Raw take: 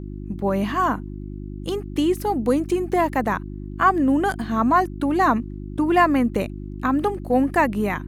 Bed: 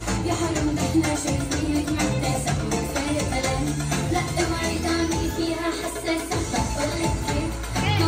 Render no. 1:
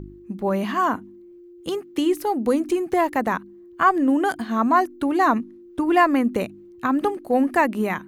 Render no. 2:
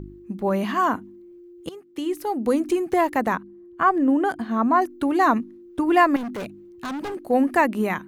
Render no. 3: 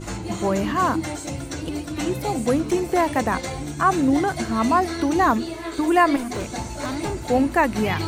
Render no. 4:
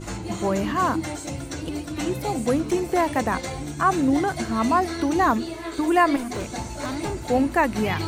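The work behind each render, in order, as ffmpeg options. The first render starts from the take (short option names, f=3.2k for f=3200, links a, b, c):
-af "bandreject=f=50:t=h:w=4,bandreject=f=100:t=h:w=4,bandreject=f=150:t=h:w=4,bandreject=f=200:t=h:w=4,bandreject=f=250:t=h:w=4,bandreject=f=300:t=h:w=4"
-filter_complex "[0:a]asettb=1/sr,asplit=3[a][b][c];[a]atrim=end=3.354[d];[b]atrim=start=3.35:end=4.82,asetpts=PTS-STARTPTS,afade=t=in:d=0.004:c=qsin,afade=t=out:st=1.466:d=0.004:c=qsin,highshelf=f=2.4k:g=-9.5[e];[c]atrim=start=4.816[f];[d][e]acrossfade=d=0.004:c1=hsin:c2=qsin[g];[g][f]acrossfade=d=0.004:c1=qsin:c2=hsin,asettb=1/sr,asplit=3[h][i][j];[h]atrim=end=6.164[k];[i]atrim=start=6.16:end=7.14,asetpts=PTS-STARTPTS,afade=t=in:d=0.004:c=qsin,afade=t=out:st=0.976:d=0.004:c=qsin,volume=28dB,asoftclip=hard,volume=-28dB[l];[j]atrim=start=7.136[m];[k][l]acrossfade=d=0.004:c1=hsin:c2=qsin[n];[n][m]acrossfade=d=0.004:c1=qsin:c2=hsin,asplit=2[o][p];[o]atrim=end=1.69,asetpts=PTS-STARTPTS,afade=t=out:st=1.686:d=0.004:c=hsin:silence=0.149624[q];[p]atrim=start=1.69,asetpts=PTS-STARTPTS,afade=t=in:d=0.91:silence=0.149624[r];[q][r]concat=n=2:v=0:a=1"
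-filter_complex "[1:a]volume=-6dB[a];[0:a][a]amix=inputs=2:normalize=0"
-af "volume=-1.5dB"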